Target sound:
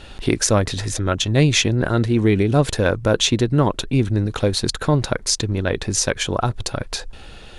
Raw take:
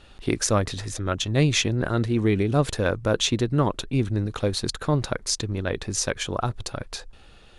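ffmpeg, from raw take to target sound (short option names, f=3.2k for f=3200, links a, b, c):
-filter_complex "[0:a]bandreject=f=1.2k:w=13,asplit=2[a][b];[b]acompressor=threshold=-37dB:ratio=6,volume=3dB[c];[a][c]amix=inputs=2:normalize=0,volume=3.5dB"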